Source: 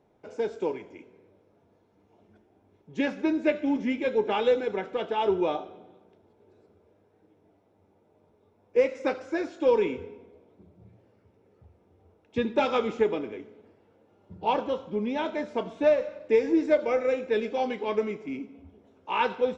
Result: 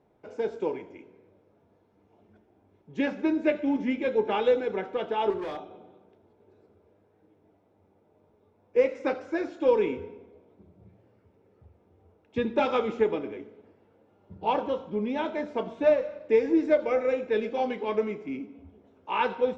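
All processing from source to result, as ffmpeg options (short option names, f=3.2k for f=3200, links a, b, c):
-filter_complex "[0:a]asettb=1/sr,asplit=3[a][b][c];[a]atrim=end=5.304[d];[b]atrim=start=5.3:end=5.71,asetpts=PTS-STARTPTS,afade=t=in:d=0.004:c=qsin,afade=t=out:st=0.406:d=0.004:c=qsin,equalizer=f=580:w=0.32:g=-3.5,volume=31.5dB,asoftclip=hard,volume=-31.5dB[e];[c]atrim=start=5.706[f];[d][e]acrossfade=d=0.004:c1=hsin:c2=qsin[g];[g][f]acrossfade=d=0.004:c1=qsin:c2=hsin,aemphasis=mode=reproduction:type=cd,bandreject=f=58.42:t=h:w=4,bandreject=f=116.84:t=h:w=4,bandreject=f=175.26:t=h:w=4,bandreject=f=233.68:t=h:w=4,bandreject=f=292.1:t=h:w=4,bandreject=f=350.52:t=h:w=4,bandreject=f=408.94:t=h:w=4,bandreject=f=467.36:t=h:w=4,bandreject=f=525.78:t=h:w=4,bandreject=f=584.2:t=h:w=4,bandreject=f=642.62:t=h:w=4,bandreject=f=701.04:t=h:w=4,bandreject=f=759.46:t=h:w=4,bandreject=f=817.88:t=h:w=4,bandreject=f=876.3:t=h:w=4,bandreject=f=934.72:t=h:w=4"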